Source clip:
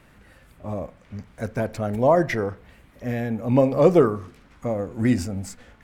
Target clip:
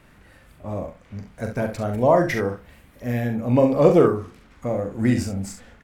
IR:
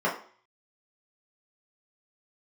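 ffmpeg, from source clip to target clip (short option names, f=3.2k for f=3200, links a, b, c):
-filter_complex "[0:a]asettb=1/sr,asplit=3[a][b][c];[a]atrim=end=2.294[d];[b]atrim=start=2.29:end=3.27,asetpts=PTS-STARTPTS,afade=t=in:d=0.004:c=qsin,afade=t=out:st=0.976:d=0.004:c=qsin,highshelf=f=9.5k:g=8.5[e];[c]atrim=start=3.266[f];[d][e]acrossfade=d=0.004:c1=hsin:c2=qsin[g];[g][f]acrossfade=d=0.004:c1=qsin:c2=hsin,aecho=1:1:41|67:0.447|0.335"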